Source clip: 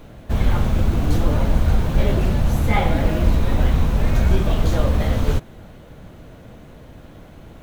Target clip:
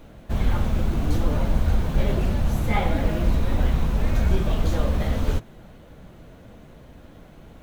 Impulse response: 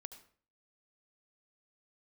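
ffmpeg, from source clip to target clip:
-af "flanger=delay=3.2:depth=2.8:regen=-67:speed=1.7:shape=triangular"

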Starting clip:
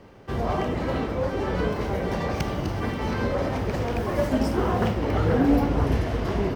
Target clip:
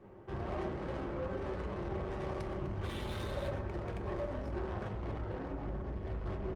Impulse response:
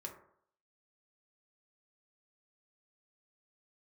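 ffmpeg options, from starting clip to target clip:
-filter_complex "[0:a]asubboost=boost=2:cutoff=120,acompressor=threshold=-21dB:ratio=20,acrusher=bits=10:mix=0:aa=0.000001,asplit=3[link_01][link_02][link_03];[link_01]afade=type=out:start_time=2.83:duration=0.02[link_04];[link_02]lowpass=frequency=3700:width_type=q:width=12,afade=type=in:start_time=2.83:duration=0.02,afade=type=out:start_time=3.48:duration=0.02[link_05];[link_03]afade=type=in:start_time=3.48:duration=0.02[link_06];[link_04][link_05][link_06]amix=inputs=3:normalize=0,adynamicsmooth=sensitivity=6.5:basefreq=2100,asoftclip=type=tanh:threshold=-30.5dB,aecho=1:1:121:0.126[link_07];[1:a]atrim=start_sample=2205,afade=type=out:start_time=0.43:duration=0.01,atrim=end_sample=19404[link_08];[link_07][link_08]afir=irnorm=-1:irlink=0,volume=-2dB" -ar 48000 -c:a libopus -b:a 32k

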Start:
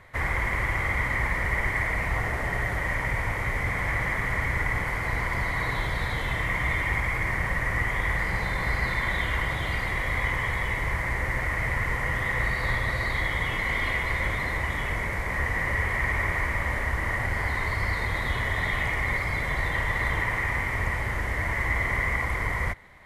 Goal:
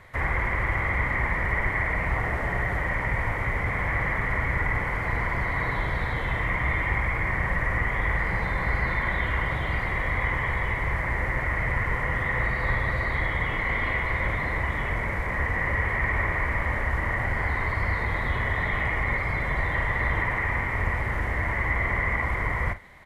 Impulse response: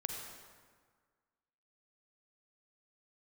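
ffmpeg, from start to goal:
-filter_complex "[0:a]acrossover=split=2700[link_01][link_02];[link_02]acompressor=threshold=-53dB:ratio=4:attack=1:release=60[link_03];[link_01][link_03]amix=inputs=2:normalize=0,asplit=2[link_04][link_05];[link_05]adelay=45,volume=-12.5dB[link_06];[link_04][link_06]amix=inputs=2:normalize=0,volume=1.5dB"

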